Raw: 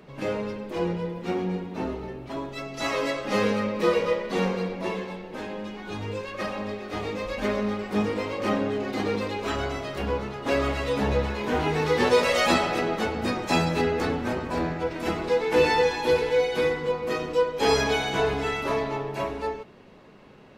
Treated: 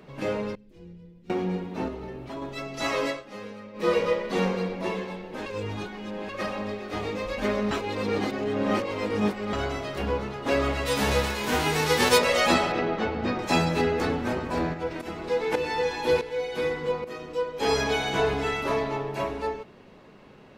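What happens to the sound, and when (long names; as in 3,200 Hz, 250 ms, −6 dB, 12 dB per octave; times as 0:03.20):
0:00.55–0:01.30: guitar amp tone stack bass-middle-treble 10-0-1
0:01.88–0:02.42: downward compressor 2 to 1, threshold −34 dBFS
0:03.06–0:03.92: duck −16 dB, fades 0.19 s
0:05.46–0:06.29: reverse
0:07.71–0:09.53: reverse
0:10.85–0:12.17: spectral envelope flattened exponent 0.6
0:12.72–0:13.39: high-frequency loss of the air 150 metres
0:14.73–0:18.05: shaped tremolo saw up 2.2 Hz → 0.76 Hz, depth 75%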